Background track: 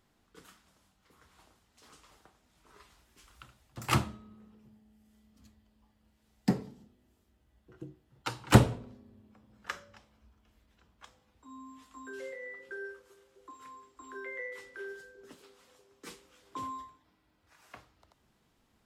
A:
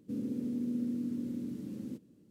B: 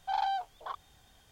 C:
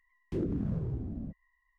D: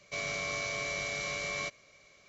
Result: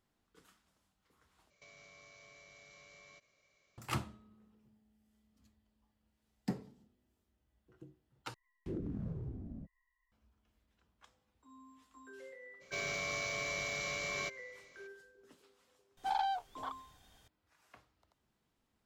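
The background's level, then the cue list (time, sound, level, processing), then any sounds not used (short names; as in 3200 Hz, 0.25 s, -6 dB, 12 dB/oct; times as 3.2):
background track -9.5 dB
1.5 replace with D -14 dB + compressor 12:1, threshold -41 dBFS
8.34 replace with C -8 dB
12.6 add D -3 dB, fades 0.02 s + short-mantissa float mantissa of 4-bit
15.97 add B -3 dB
not used: A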